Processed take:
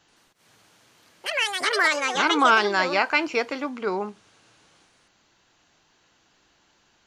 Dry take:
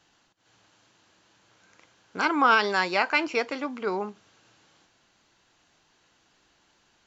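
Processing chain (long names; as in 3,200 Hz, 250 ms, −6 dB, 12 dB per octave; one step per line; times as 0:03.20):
delay with pitch and tempo change per echo 82 ms, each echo +6 semitones, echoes 2
level +2 dB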